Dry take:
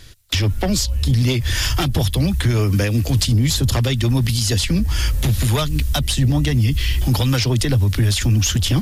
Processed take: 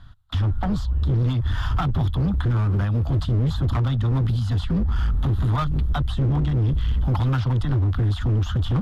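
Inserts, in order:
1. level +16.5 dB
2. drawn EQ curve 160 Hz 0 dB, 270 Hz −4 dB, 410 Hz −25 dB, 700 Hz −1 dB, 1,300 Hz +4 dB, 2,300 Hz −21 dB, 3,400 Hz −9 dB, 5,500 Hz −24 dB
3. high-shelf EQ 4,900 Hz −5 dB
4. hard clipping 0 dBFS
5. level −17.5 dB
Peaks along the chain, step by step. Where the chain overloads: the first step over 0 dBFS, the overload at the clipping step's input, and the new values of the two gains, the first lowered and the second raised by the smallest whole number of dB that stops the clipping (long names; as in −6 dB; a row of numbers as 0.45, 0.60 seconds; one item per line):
+8.0, +8.0, +8.0, 0.0, −17.5 dBFS
step 1, 8.0 dB
step 1 +8.5 dB, step 5 −9.5 dB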